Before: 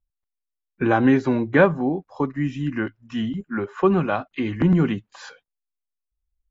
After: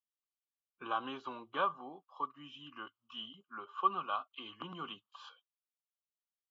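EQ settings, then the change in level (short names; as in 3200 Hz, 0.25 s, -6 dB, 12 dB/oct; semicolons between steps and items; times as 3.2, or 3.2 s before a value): double band-pass 1900 Hz, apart 1.4 oct; -2.0 dB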